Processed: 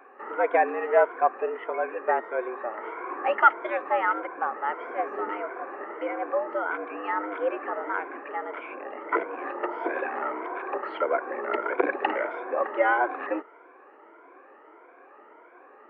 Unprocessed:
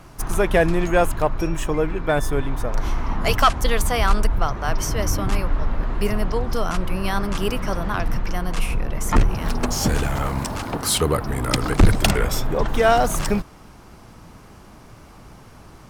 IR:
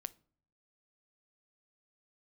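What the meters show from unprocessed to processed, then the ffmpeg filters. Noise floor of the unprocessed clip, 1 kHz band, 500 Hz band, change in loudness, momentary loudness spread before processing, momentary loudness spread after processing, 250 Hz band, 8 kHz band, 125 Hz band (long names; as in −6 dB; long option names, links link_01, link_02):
−45 dBFS, −1.5 dB, −3.5 dB, −5.5 dB, 9 LU, 11 LU, −12.5 dB, below −40 dB, below −40 dB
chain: -af "afftfilt=real='re*pow(10,13/40*sin(2*PI*(1.6*log(max(b,1)*sr/1024/100)/log(2)-(1.6)*(pts-256)/sr)))':imag='im*pow(10,13/40*sin(2*PI*(1.6*log(max(b,1)*sr/1024/100)/log(2)-(1.6)*(pts-256)/sr)))':win_size=1024:overlap=0.75,highpass=frequency=250:width_type=q:width=0.5412,highpass=frequency=250:width_type=q:width=1.307,lowpass=frequency=2100:width_type=q:width=0.5176,lowpass=frequency=2100:width_type=q:width=0.7071,lowpass=frequency=2100:width_type=q:width=1.932,afreqshift=110,volume=-4.5dB"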